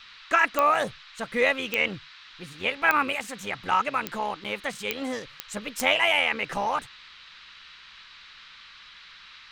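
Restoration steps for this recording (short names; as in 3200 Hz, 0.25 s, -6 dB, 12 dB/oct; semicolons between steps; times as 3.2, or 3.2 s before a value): de-click; notch 3900 Hz, Q 30; interpolate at 4.44, 7.1 ms; noise print and reduce 22 dB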